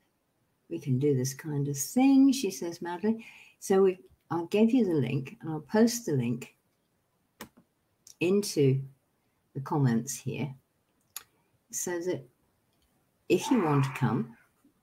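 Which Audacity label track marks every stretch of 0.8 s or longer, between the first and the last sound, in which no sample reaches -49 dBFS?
6.500000	7.400000	silence
12.260000	13.300000	silence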